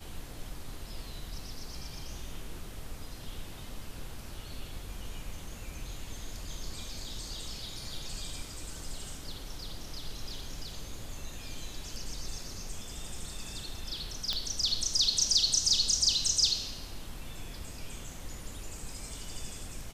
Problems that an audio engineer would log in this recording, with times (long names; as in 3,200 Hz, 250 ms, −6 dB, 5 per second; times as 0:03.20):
0:14.33: click −17 dBFS